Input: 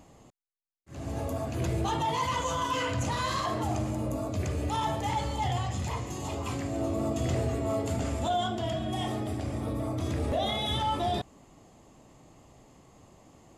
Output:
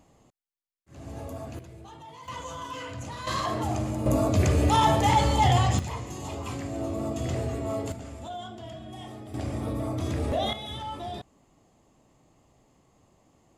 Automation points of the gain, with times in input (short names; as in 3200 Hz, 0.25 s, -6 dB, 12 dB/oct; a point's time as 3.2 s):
-5 dB
from 1.59 s -17 dB
from 2.28 s -7.5 dB
from 3.27 s +1.5 dB
from 4.06 s +9 dB
from 5.79 s -1 dB
from 7.92 s -9.5 dB
from 9.34 s +1.5 dB
from 10.53 s -7 dB